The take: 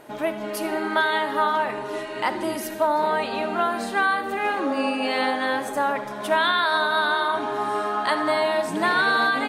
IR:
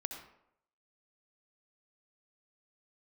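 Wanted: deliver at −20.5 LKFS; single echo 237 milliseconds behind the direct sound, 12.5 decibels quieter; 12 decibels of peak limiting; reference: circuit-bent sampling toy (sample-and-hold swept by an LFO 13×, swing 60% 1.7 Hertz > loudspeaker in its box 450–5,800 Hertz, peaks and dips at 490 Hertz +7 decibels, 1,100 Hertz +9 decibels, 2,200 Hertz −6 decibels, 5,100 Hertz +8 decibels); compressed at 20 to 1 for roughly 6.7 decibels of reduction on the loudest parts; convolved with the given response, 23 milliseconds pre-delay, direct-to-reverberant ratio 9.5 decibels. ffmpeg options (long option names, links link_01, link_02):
-filter_complex "[0:a]acompressor=threshold=-23dB:ratio=20,alimiter=limit=-24dB:level=0:latency=1,aecho=1:1:237:0.237,asplit=2[link_01][link_02];[1:a]atrim=start_sample=2205,adelay=23[link_03];[link_02][link_03]afir=irnorm=-1:irlink=0,volume=-9dB[link_04];[link_01][link_04]amix=inputs=2:normalize=0,acrusher=samples=13:mix=1:aa=0.000001:lfo=1:lforange=7.8:lforate=1.7,highpass=450,equalizer=frequency=490:width_type=q:width=4:gain=7,equalizer=frequency=1100:width_type=q:width=4:gain=9,equalizer=frequency=2200:width_type=q:width=4:gain=-6,equalizer=frequency=5100:width_type=q:width=4:gain=8,lowpass=frequency=5800:width=0.5412,lowpass=frequency=5800:width=1.3066,volume=9dB"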